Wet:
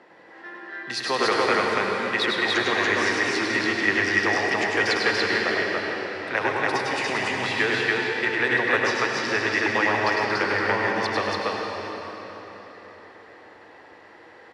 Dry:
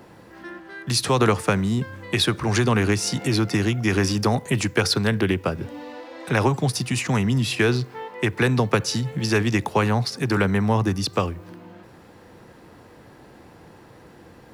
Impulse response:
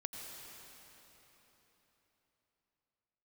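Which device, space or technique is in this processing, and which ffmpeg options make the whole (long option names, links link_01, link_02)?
station announcement: -filter_complex "[0:a]asubboost=boost=9.5:cutoff=54,highpass=370,lowpass=4300,equalizer=frequency=1900:width_type=o:width=0.24:gain=10,aecho=1:1:102|285.7:0.631|0.891[link_01];[1:a]atrim=start_sample=2205[link_02];[link_01][link_02]afir=irnorm=-1:irlink=0"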